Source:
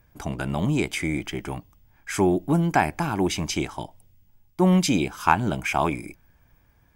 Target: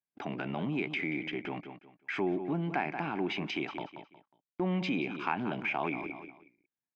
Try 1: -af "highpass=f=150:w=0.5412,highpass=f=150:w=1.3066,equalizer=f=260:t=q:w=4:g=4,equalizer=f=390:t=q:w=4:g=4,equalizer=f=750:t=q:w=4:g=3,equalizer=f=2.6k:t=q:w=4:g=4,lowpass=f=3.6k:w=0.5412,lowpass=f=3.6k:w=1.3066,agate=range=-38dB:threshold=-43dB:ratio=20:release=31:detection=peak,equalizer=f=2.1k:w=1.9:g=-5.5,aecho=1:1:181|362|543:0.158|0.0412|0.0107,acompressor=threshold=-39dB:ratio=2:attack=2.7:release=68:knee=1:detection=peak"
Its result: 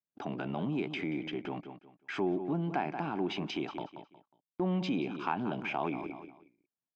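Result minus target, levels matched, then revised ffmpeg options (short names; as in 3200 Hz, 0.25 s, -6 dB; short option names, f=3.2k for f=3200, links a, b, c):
2000 Hz band -4.5 dB
-af "highpass=f=150:w=0.5412,highpass=f=150:w=1.3066,equalizer=f=260:t=q:w=4:g=4,equalizer=f=390:t=q:w=4:g=4,equalizer=f=750:t=q:w=4:g=3,equalizer=f=2.6k:t=q:w=4:g=4,lowpass=f=3.6k:w=0.5412,lowpass=f=3.6k:w=1.3066,agate=range=-38dB:threshold=-43dB:ratio=20:release=31:detection=peak,equalizer=f=2.1k:w=1.9:g=5,aecho=1:1:181|362|543:0.158|0.0412|0.0107,acompressor=threshold=-39dB:ratio=2:attack=2.7:release=68:knee=1:detection=peak"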